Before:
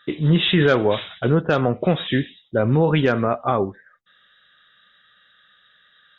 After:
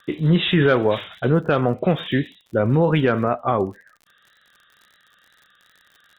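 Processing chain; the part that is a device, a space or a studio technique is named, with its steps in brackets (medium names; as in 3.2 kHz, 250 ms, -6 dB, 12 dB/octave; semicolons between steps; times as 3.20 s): lo-fi chain (low-pass 3.5 kHz; wow and flutter; crackle 50 per s -39 dBFS)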